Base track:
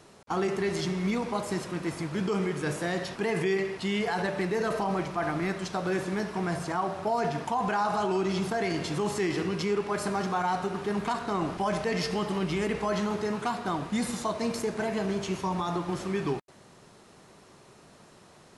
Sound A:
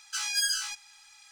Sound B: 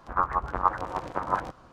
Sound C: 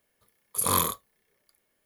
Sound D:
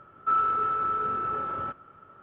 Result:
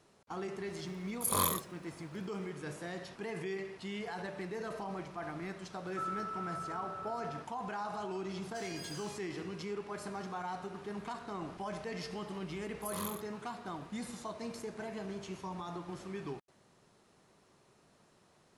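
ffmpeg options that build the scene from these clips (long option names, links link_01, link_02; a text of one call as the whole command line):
ffmpeg -i bed.wav -i cue0.wav -i cue1.wav -i cue2.wav -i cue3.wav -filter_complex "[3:a]asplit=2[link_01][link_02];[0:a]volume=-12dB[link_03];[1:a]alimiter=limit=-23.5dB:level=0:latency=1:release=71[link_04];[link_01]atrim=end=1.85,asetpts=PTS-STARTPTS,volume=-6.5dB,afade=type=in:duration=0.004:curve=hsin,afade=type=out:start_time=1.846:duration=0.004:curve=hsin,adelay=660[link_05];[4:a]atrim=end=2.22,asetpts=PTS-STARTPTS,volume=-14.5dB,afade=type=in:duration=0.004:curve=hsin,afade=type=out:start_time=2.216:duration=0.004:curve=hsin,adelay=5700[link_06];[link_04]atrim=end=1.31,asetpts=PTS-STARTPTS,volume=-16dB,afade=type=in:duration=0.004:curve=hsin,afade=type=out:start_time=1.306:duration=0.004:curve=hsin,adelay=371322S[link_07];[link_02]atrim=end=1.85,asetpts=PTS-STARTPTS,volume=-17.5dB,afade=type=in:duration=0.004:curve=hsin,afade=type=out:start_time=1.846:duration=0.004:curve=hsin,adelay=12270[link_08];[link_03][link_05][link_06][link_07][link_08]amix=inputs=5:normalize=0" out.wav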